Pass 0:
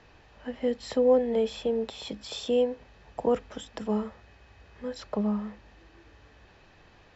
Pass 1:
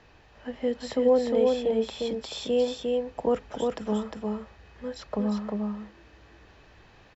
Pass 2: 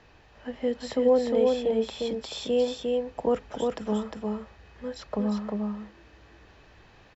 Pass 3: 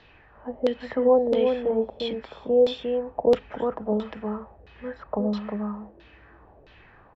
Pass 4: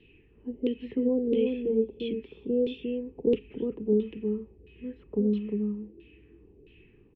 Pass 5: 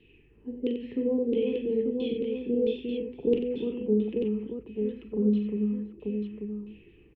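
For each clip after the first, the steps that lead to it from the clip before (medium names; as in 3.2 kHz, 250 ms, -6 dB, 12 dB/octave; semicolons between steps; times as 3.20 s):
delay 354 ms -3 dB
no audible change
LFO low-pass saw down 1.5 Hz 500–3900 Hz
FFT filter 100 Hz 0 dB, 420 Hz +7 dB, 620 Hz -25 dB, 940 Hz -22 dB, 1.5 kHz -25 dB, 2.7 kHz +3 dB, 4.6 kHz -21 dB; trim -3 dB
multi-tap echo 42/48/91/890 ms -8/-17.5/-8/-4.5 dB; trim -1.5 dB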